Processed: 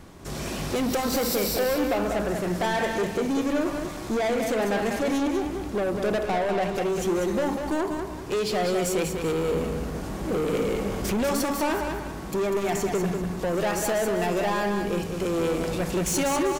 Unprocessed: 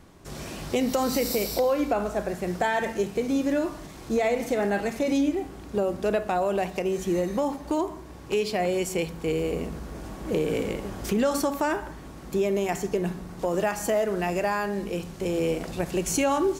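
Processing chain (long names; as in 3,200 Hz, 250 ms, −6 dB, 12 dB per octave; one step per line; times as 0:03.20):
0:06.23–0:06.75: high-shelf EQ 9,000 Hz −10 dB
soft clipping −28 dBFS, distortion −9 dB
repeating echo 195 ms, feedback 32%, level −6 dB
level +5.5 dB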